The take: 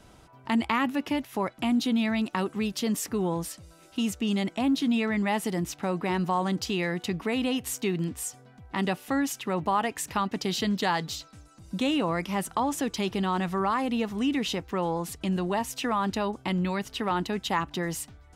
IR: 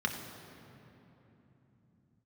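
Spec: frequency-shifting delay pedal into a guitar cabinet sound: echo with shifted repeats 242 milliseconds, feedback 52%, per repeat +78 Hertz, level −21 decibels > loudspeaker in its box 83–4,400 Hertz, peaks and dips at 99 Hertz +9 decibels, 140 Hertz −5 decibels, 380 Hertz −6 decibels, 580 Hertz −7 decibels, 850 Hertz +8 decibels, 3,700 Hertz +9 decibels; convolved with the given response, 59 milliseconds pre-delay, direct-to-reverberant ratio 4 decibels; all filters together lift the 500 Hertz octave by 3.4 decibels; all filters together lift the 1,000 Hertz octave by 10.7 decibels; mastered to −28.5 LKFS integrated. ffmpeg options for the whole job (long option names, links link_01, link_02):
-filter_complex "[0:a]equalizer=frequency=500:width_type=o:gain=8.5,equalizer=frequency=1000:width_type=o:gain=5,asplit=2[link_01][link_02];[1:a]atrim=start_sample=2205,adelay=59[link_03];[link_02][link_03]afir=irnorm=-1:irlink=0,volume=-11dB[link_04];[link_01][link_04]amix=inputs=2:normalize=0,asplit=5[link_05][link_06][link_07][link_08][link_09];[link_06]adelay=242,afreqshift=78,volume=-21dB[link_10];[link_07]adelay=484,afreqshift=156,volume=-26.7dB[link_11];[link_08]adelay=726,afreqshift=234,volume=-32.4dB[link_12];[link_09]adelay=968,afreqshift=312,volume=-38dB[link_13];[link_05][link_10][link_11][link_12][link_13]amix=inputs=5:normalize=0,highpass=83,equalizer=frequency=99:width_type=q:width=4:gain=9,equalizer=frequency=140:width_type=q:width=4:gain=-5,equalizer=frequency=380:width_type=q:width=4:gain=-6,equalizer=frequency=580:width_type=q:width=4:gain=-7,equalizer=frequency=850:width_type=q:width=4:gain=8,equalizer=frequency=3700:width_type=q:width=4:gain=9,lowpass=frequency=4400:width=0.5412,lowpass=frequency=4400:width=1.3066,volume=-6.5dB"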